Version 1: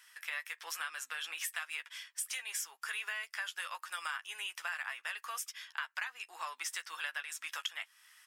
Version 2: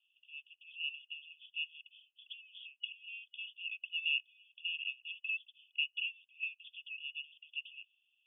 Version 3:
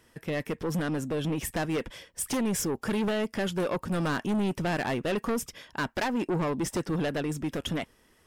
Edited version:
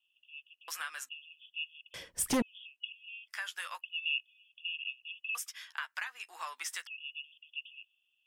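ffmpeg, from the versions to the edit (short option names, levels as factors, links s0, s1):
-filter_complex "[0:a]asplit=3[s0][s1][s2];[1:a]asplit=5[s3][s4][s5][s6][s7];[s3]atrim=end=0.682[s8];[s0]atrim=start=0.678:end=1.092[s9];[s4]atrim=start=1.088:end=1.942[s10];[2:a]atrim=start=1.938:end=2.422[s11];[s5]atrim=start=2.418:end=3.31[s12];[s1]atrim=start=3.27:end=3.83[s13];[s6]atrim=start=3.79:end=5.352[s14];[s2]atrim=start=5.348:end=6.872[s15];[s7]atrim=start=6.868[s16];[s8][s9]acrossfade=d=0.004:c1=hsin:c2=hsin[s17];[s17][s10]acrossfade=d=0.004:c1=hsin:c2=hsin[s18];[s18][s11]acrossfade=d=0.004:c1=hsin:c2=hsin[s19];[s19][s12]acrossfade=d=0.004:c1=hsin:c2=hsin[s20];[s20][s13]acrossfade=d=0.04:c1=tri:c2=tri[s21];[s21][s14]acrossfade=d=0.04:c1=tri:c2=tri[s22];[s22][s15]acrossfade=d=0.004:c1=hsin:c2=hsin[s23];[s23][s16]acrossfade=d=0.004:c1=hsin:c2=hsin"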